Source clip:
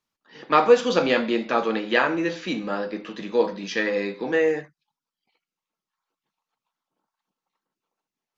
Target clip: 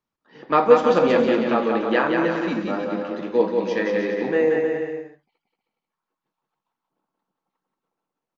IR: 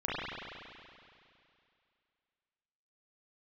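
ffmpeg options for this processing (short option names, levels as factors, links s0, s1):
-af "highshelf=f=2100:g=-12,aecho=1:1:180|315|416.2|492.2|549.1:0.631|0.398|0.251|0.158|0.1,volume=1.26"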